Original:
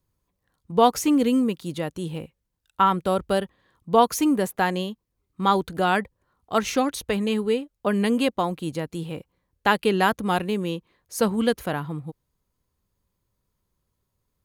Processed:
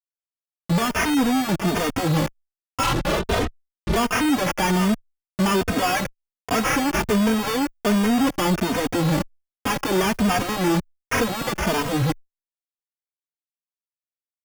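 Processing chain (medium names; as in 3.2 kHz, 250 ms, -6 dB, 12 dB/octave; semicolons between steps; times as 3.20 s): 9.06–9.70 s: comb filter that takes the minimum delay 0.31 ms; compression 6:1, threshold -28 dBFS, peak gain reduction 15.5 dB; bit crusher 8-bit; small resonant body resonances 270/2800 Hz, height 7 dB, ringing for 30 ms; speakerphone echo 80 ms, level -27 dB; sample-and-hold 11×; 2.83–3.96 s: LPC vocoder at 8 kHz whisper; fuzz box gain 50 dB, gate -49 dBFS; endless flanger 3 ms +1.3 Hz; trim -3 dB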